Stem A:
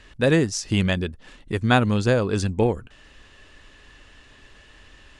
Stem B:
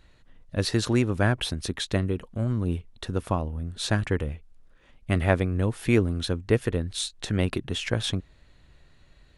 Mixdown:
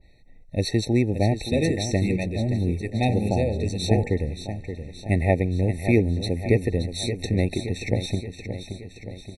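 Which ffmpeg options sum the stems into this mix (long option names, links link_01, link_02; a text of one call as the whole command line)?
ffmpeg -i stem1.wav -i stem2.wav -filter_complex "[0:a]bandreject=frequency=47.69:width_type=h:width=4,bandreject=frequency=95.38:width_type=h:width=4,bandreject=frequency=143.07:width_type=h:width=4,bandreject=frequency=190.76:width_type=h:width=4,bandreject=frequency=238.45:width_type=h:width=4,bandreject=frequency=286.14:width_type=h:width=4,bandreject=frequency=333.83:width_type=h:width=4,bandreject=frequency=381.52:width_type=h:width=4,bandreject=frequency=429.21:width_type=h:width=4,bandreject=frequency=476.9:width_type=h:width=4,bandreject=frequency=524.59:width_type=h:width=4,bandreject=frequency=572.28:width_type=h:width=4,bandreject=frequency=619.97:width_type=h:width=4,bandreject=frequency=667.66:width_type=h:width=4,bandreject=frequency=715.35:width_type=h:width=4,bandreject=frequency=763.04:width_type=h:width=4,bandreject=frequency=810.73:width_type=h:width=4,bandreject=frequency=858.42:width_type=h:width=4,bandreject=frequency=906.11:width_type=h:width=4,bandreject=frequency=953.8:width_type=h:width=4,bandreject=frequency=1001.49:width_type=h:width=4,bandreject=frequency=1049.18:width_type=h:width=4,bandreject=frequency=1096.87:width_type=h:width=4,bandreject=frequency=1144.56:width_type=h:width=4,bandreject=frequency=1192.25:width_type=h:width=4,bandreject=frequency=1239.94:width_type=h:width=4,bandreject=frequency=1287.63:width_type=h:width=4,bandreject=frequency=1335.32:width_type=h:width=4,bandreject=frequency=1383.01:width_type=h:width=4,bandreject=frequency=1430.7:width_type=h:width=4,bandreject=frequency=1478.39:width_type=h:width=4,adelay=1300,volume=-4.5dB[link_01];[1:a]adynamicequalizer=threshold=0.00891:dfrequency=1900:dqfactor=0.7:tfrequency=1900:tqfactor=0.7:attack=5:release=100:ratio=0.375:range=2:mode=cutabove:tftype=highshelf,volume=2dB,asplit=2[link_02][link_03];[link_03]volume=-9.5dB,aecho=0:1:574|1148|1722|2296|2870|3444|4018|4592|5166:1|0.57|0.325|0.185|0.106|0.0602|0.0343|0.0195|0.0111[link_04];[link_01][link_02][link_04]amix=inputs=3:normalize=0,afftfilt=real='re*eq(mod(floor(b*sr/1024/900),2),0)':imag='im*eq(mod(floor(b*sr/1024/900),2),0)':win_size=1024:overlap=0.75" out.wav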